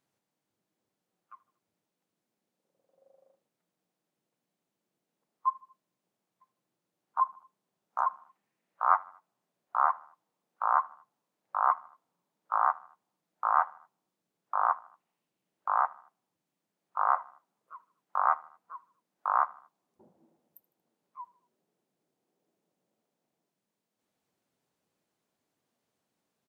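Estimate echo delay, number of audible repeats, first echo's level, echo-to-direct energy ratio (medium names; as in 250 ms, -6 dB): 77 ms, 3, -23.0 dB, -22.0 dB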